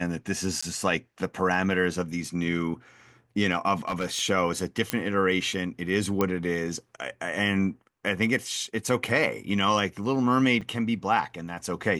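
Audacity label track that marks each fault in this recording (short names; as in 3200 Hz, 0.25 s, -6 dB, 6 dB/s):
0.610000	0.620000	gap 15 ms
3.880000	4.210000	clipped -23 dBFS
4.900000	4.900000	pop -8 dBFS
6.210000	6.210000	pop -11 dBFS
10.610000	10.620000	gap 5.3 ms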